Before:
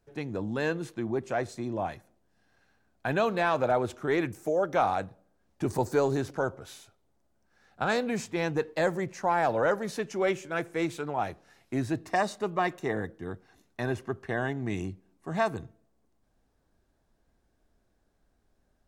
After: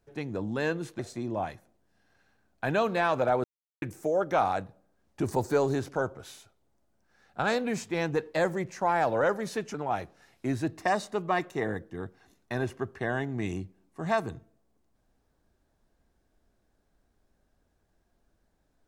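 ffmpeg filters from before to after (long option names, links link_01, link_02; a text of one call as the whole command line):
ffmpeg -i in.wav -filter_complex "[0:a]asplit=5[link_01][link_02][link_03][link_04][link_05];[link_01]atrim=end=0.992[link_06];[link_02]atrim=start=1.408:end=3.86,asetpts=PTS-STARTPTS,afade=type=out:start_time=2.448:duration=0.004:curve=hsin[link_07];[link_03]atrim=start=3.86:end=4.24,asetpts=PTS-STARTPTS,volume=0[link_08];[link_04]atrim=start=4.24:end=10.162,asetpts=PTS-STARTPTS,afade=type=in:duration=0.004:curve=hsin[link_09];[link_05]atrim=start=11.018[link_10];[link_07][link_08][link_09]concat=n=3:v=0:a=1[link_11];[link_06][link_11]acrossfade=duration=0.004:curve1=hsin:curve2=hsin[link_12];[link_12][link_10]acrossfade=duration=0.004:curve1=hsin:curve2=hsin" out.wav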